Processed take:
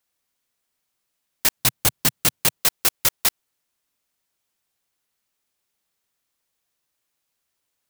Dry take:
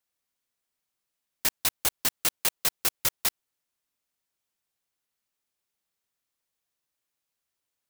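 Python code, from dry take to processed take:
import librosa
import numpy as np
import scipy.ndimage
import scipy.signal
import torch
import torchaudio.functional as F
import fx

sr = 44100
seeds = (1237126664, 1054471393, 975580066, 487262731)

y = fx.peak_eq(x, sr, hz=130.0, db=12.0, octaves=1.7, at=(1.57, 2.62))
y = y * 10.0 ** (6.5 / 20.0)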